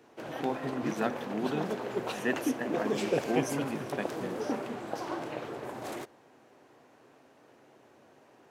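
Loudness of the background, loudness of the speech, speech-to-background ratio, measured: −35.5 LKFS, −36.0 LKFS, −0.5 dB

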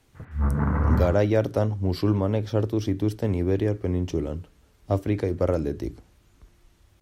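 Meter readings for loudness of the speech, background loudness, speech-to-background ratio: −25.5 LKFS, −25.0 LKFS, −0.5 dB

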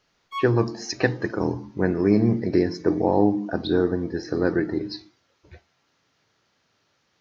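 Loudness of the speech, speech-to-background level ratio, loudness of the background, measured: −23.5 LKFS, 12.0 dB, −35.5 LKFS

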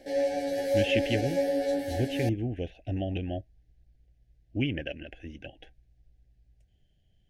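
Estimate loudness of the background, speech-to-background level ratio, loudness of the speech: −29.5 LKFS, −3.5 dB, −33.0 LKFS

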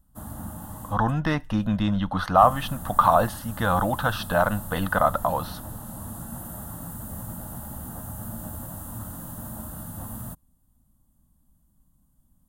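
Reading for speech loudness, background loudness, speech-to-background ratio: −23.5 LKFS, −37.0 LKFS, 13.5 dB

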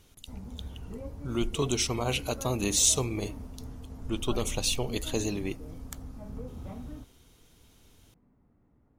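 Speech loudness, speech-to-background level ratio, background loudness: −29.0 LKFS, 14.5 dB, −43.5 LKFS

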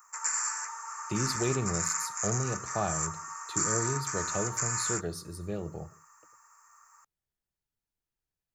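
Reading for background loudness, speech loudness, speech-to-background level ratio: −31.5 LKFS, −35.5 LKFS, −4.0 dB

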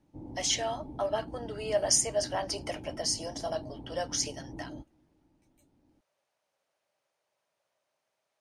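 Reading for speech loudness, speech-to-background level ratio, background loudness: −31.0 LKFS, 14.0 dB, −45.0 LKFS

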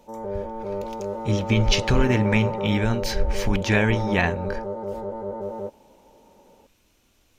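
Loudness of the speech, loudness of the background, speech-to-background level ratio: −23.5 LKFS, −30.5 LKFS, 7.0 dB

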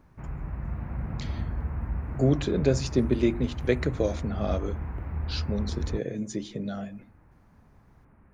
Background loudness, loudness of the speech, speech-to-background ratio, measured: −34.5 LKFS, −29.0 LKFS, 5.5 dB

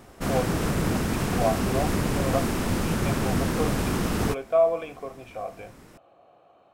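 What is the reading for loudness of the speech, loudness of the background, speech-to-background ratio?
−30.5 LKFS, −26.5 LKFS, −4.0 dB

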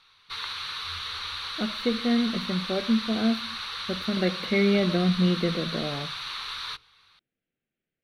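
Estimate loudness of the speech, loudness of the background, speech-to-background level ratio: −26.5 LKFS, −32.5 LKFS, 6.0 dB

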